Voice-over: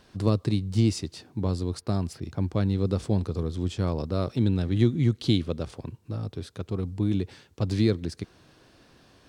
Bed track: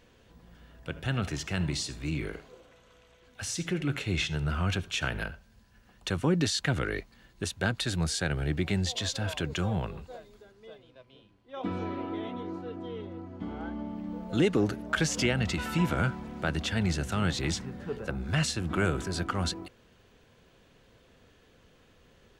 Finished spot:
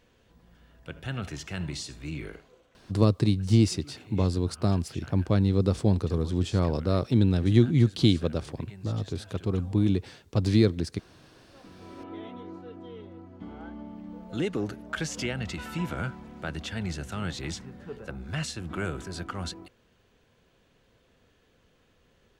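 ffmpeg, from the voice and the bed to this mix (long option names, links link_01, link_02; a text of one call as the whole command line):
ffmpeg -i stem1.wav -i stem2.wav -filter_complex "[0:a]adelay=2750,volume=2dB[link_01];[1:a]volume=10.5dB,afade=type=out:start_time=2.26:duration=0.91:silence=0.177828,afade=type=in:start_time=11.76:duration=0.42:silence=0.199526[link_02];[link_01][link_02]amix=inputs=2:normalize=0" out.wav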